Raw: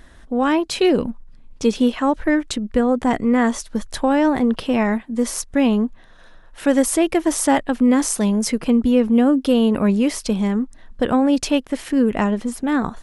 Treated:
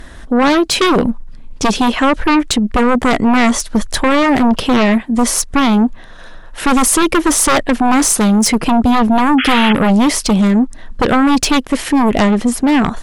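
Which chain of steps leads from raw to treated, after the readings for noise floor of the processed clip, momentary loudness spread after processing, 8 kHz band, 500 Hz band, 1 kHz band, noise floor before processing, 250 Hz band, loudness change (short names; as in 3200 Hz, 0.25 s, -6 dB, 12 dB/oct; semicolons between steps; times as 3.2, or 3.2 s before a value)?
-33 dBFS, 5 LU, +10.5 dB, +3.0 dB, +10.0 dB, -45 dBFS, +5.0 dB, +6.0 dB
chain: sine folder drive 12 dB, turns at -3.5 dBFS; painted sound noise, 9.38–9.73, 1200–3400 Hz -14 dBFS; gain -4 dB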